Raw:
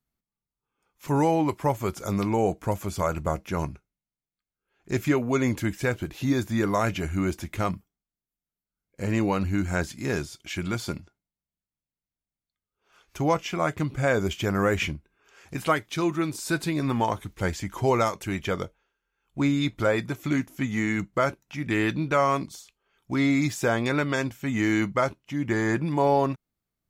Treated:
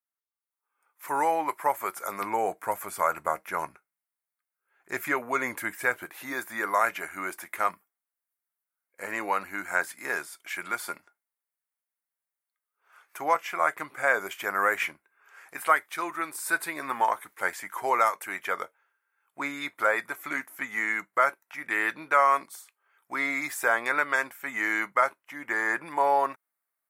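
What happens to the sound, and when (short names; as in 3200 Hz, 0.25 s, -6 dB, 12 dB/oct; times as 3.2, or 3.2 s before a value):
2.21–6.06 low shelf 150 Hz +11.5 dB
whole clip: HPF 990 Hz 12 dB/oct; band shelf 4300 Hz -13 dB; AGC gain up to 11.5 dB; gain -5 dB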